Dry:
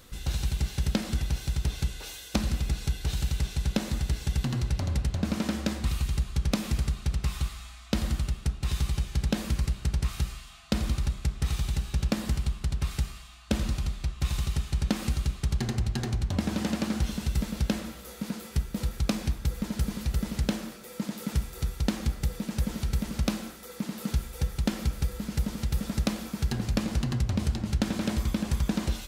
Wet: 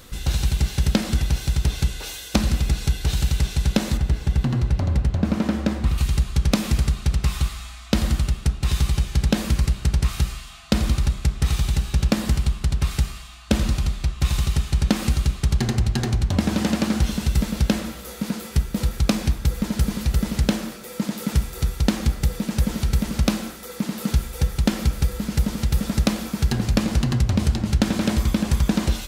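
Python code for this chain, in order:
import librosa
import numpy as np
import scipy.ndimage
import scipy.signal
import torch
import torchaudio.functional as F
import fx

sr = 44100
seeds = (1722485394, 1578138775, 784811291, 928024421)

y = fx.high_shelf(x, sr, hz=2700.0, db=-11.5, at=(3.97, 5.98))
y = F.gain(torch.from_numpy(y), 7.5).numpy()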